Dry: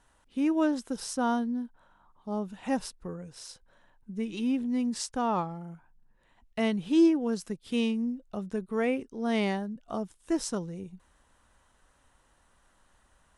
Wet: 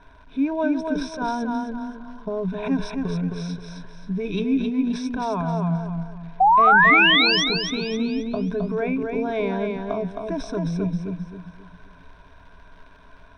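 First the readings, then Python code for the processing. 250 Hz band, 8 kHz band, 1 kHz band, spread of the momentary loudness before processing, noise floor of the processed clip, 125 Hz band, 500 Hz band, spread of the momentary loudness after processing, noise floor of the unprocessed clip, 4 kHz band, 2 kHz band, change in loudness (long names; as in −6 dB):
+4.0 dB, −0.5 dB, +14.5 dB, 16 LU, −49 dBFS, +13.5 dB, +6.5 dB, 19 LU, −67 dBFS, +17.5 dB, +20.0 dB, +9.0 dB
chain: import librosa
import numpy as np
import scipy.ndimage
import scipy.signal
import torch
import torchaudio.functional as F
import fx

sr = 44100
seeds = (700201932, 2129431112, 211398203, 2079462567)

p1 = fx.ripple_eq(x, sr, per_octave=1.6, db=17)
p2 = fx.over_compress(p1, sr, threshold_db=-35.0, ratio=-0.5)
p3 = p1 + (p2 * 10.0 ** (3.0 / 20.0))
p4 = fx.spec_paint(p3, sr, seeds[0], shape='rise', start_s=6.4, length_s=1.04, low_hz=730.0, high_hz=6000.0, level_db=-13.0)
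p5 = fx.dmg_crackle(p4, sr, seeds[1], per_s=120.0, level_db=-36.0)
p6 = fx.air_absorb(p5, sr, metres=280.0)
y = fx.echo_feedback(p6, sr, ms=265, feedback_pct=36, wet_db=-4.5)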